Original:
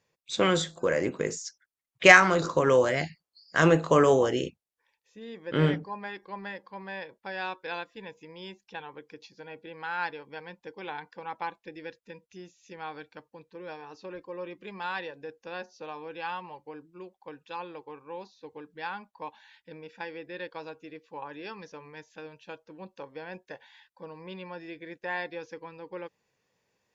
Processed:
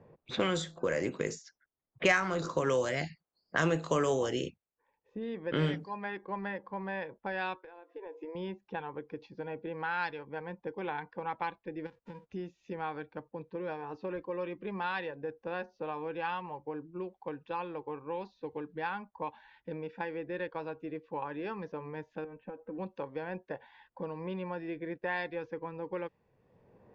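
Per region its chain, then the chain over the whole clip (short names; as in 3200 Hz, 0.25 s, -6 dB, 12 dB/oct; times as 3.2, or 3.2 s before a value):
7.58–8.35 brick-wall FIR high-pass 290 Hz + compressor 20:1, threshold -47 dBFS + doubler 17 ms -14 dB
11.85–12.25 spectral whitening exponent 0.3 + compressor 3:1, threshold -52 dBFS
22.24–22.78 LPF 2200 Hz 24 dB/oct + compressor 10:1, threshold -48 dBFS + comb 3.9 ms, depth 66%
whole clip: low-pass opened by the level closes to 710 Hz, open at -23.5 dBFS; low shelf 120 Hz +7 dB; three-band squash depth 70%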